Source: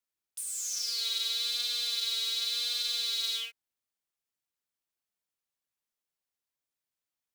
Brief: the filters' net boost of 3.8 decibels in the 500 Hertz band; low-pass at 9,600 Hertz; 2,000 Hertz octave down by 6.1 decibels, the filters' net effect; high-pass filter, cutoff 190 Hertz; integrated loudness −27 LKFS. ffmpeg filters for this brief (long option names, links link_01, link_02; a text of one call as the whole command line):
ffmpeg -i in.wav -af "highpass=190,lowpass=9600,equalizer=frequency=500:width_type=o:gain=4.5,equalizer=frequency=2000:width_type=o:gain=-8.5,volume=4.5dB" out.wav